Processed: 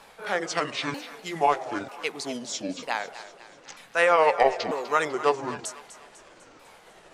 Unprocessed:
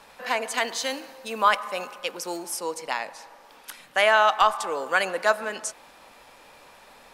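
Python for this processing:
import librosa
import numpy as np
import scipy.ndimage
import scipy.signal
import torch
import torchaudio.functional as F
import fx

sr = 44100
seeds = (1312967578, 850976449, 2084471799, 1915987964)

y = fx.pitch_ramps(x, sr, semitones=-11.0, every_ms=942)
y = fx.echo_thinned(y, sr, ms=249, feedback_pct=55, hz=800.0, wet_db=-13.0)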